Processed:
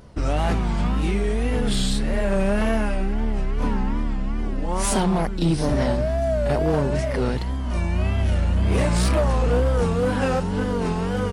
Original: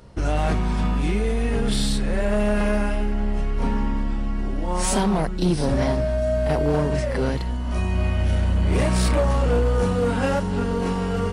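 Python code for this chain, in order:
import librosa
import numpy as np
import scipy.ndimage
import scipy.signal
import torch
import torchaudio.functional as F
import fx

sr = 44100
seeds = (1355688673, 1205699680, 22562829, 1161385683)

y = fx.wow_flutter(x, sr, seeds[0], rate_hz=2.1, depth_cents=130.0)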